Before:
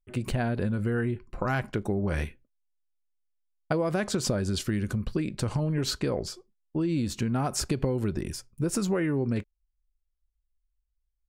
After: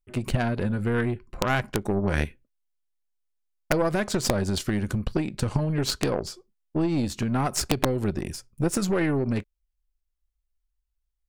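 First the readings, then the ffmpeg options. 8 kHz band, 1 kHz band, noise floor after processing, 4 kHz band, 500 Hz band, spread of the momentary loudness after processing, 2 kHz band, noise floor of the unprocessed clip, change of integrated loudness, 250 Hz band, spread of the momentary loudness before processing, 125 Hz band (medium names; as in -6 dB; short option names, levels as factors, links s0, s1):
+2.5 dB, +4.5 dB, -79 dBFS, +3.5 dB, +3.0 dB, 6 LU, +4.5 dB, -79 dBFS, +2.5 dB, +2.5 dB, 6 LU, +2.0 dB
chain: -af "aeval=exprs='(mod(5.62*val(0)+1,2)-1)/5.62':c=same,aeval=exprs='0.188*(cos(1*acos(clip(val(0)/0.188,-1,1)))-cos(1*PI/2))+0.0668*(cos(2*acos(clip(val(0)/0.188,-1,1)))-cos(2*PI/2))+0.0106*(cos(7*acos(clip(val(0)/0.188,-1,1)))-cos(7*PI/2))':c=same,volume=1.58"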